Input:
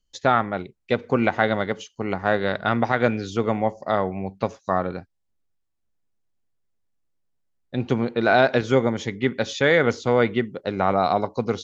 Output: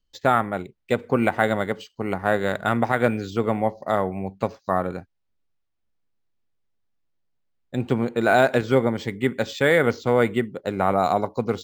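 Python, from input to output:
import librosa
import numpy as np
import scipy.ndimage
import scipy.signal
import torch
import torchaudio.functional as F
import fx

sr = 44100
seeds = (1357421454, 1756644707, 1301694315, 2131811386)

y = np.interp(np.arange(len(x)), np.arange(len(x))[::4], x[::4])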